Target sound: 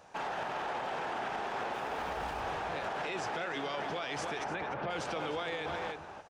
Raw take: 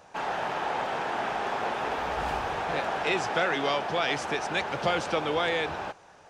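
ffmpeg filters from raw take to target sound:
-filter_complex "[0:a]asettb=1/sr,asplit=3[s0][s1][s2];[s0]atrim=end=1.734[s3];[s1]atrim=start=1.73:end=2.41,asetpts=PTS-STARTPTS,afade=t=in:d=0.004:c=qsin,afade=t=out:st=0.676:d=0.004:c=qsin,aeval=exprs='sgn(val(0))*max(abs(val(0))-0.00376,0)':c=same[s4];[s2]atrim=start=2.406[s5];[s3][s4]acrossfade=d=0.004:c1=hsin:c2=qsin[s6];[s6][s5]acrossfade=d=0.004:c1=qsin:c2=hsin,asplit=3[s7][s8][s9];[s7]afade=t=out:st=4.43:d=0.02[s10];[s8]lowpass=2100,afade=t=in:st=4.43:d=0.02,afade=t=out:st=4.89:d=0.02[s11];[s9]afade=t=in:st=4.89:d=0.02[s12];[s10][s11][s12]amix=inputs=3:normalize=0,asplit=2[s13][s14];[s14]adelay=297.4,volume=0.355,highshelf=f=4000:g=-6.69[s15];[s13][s15]amix=inputs=2:normalize=0,alimiter=level_in=1.06:limit=0.0631:level=0:latency=1:release=43,volume=0.944,volume=0.668"

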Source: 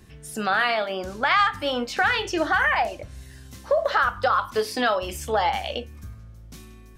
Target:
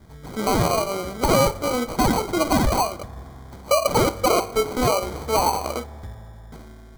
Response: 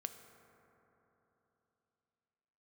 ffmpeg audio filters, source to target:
-filter_complex "[0:a]acrusher=samples=25:mix=1:aa=0.000001,asuperstop=centerf=2700:order=4:qfactor=4.4,asplit=2[s0][s1];[1:a]atrim=start_sample=2205[s2];[s1][s2]afir=irnorm=-1:irlink=0,volume=0.473[s3];[s0][s3]amix=inputs=2:normalize=0"

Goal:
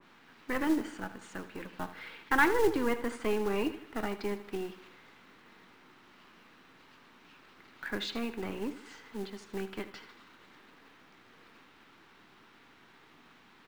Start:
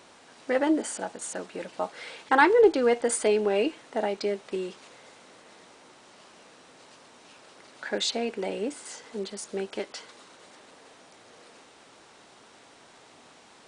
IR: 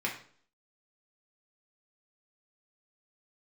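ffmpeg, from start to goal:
-filter_complex "[0:a]highpass=100,lowpass=2800,equalizer=f=570:w=1.9:g=-6,asplit=2[s0][s1];[s1]asoftclip=type=hard:threshold=0.075,volume=0.266[s2];[s0][s2]amix=inputs=2:normalize=0,acrusher=bits=5:mode=log:mix=0:aa=0.000001,aecho=1:1:78|156|234|312|390:0.211|0.101|0.0487|0.0234|0.0112,acrossover=split=470|830[s3][s4][s5];[s4]aeval=exprs='abs(val(0))':c=same[s6];[s3][s6][s5]amix=inputs=3:normalize=0,adynamicequalizer=threshold=0.00631:dfrequency=1900:dqfactor=0.7:tfrequency=1900:tqfactor=0.7:attack=5:release=100:ratio=0.375:range=1.5:mode=cutabove:tftype=highshelf,volume=0.668"

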